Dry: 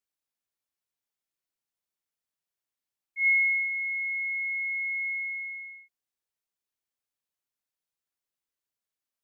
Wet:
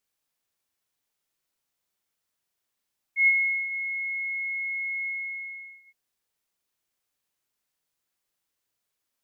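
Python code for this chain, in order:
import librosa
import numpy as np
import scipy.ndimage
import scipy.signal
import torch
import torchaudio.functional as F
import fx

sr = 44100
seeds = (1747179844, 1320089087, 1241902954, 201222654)

y = fx.doubler(x, sr, ms=44.0, db=-4.5)
y = F.gain(torch.from_numpy(y), 7.0).numpy()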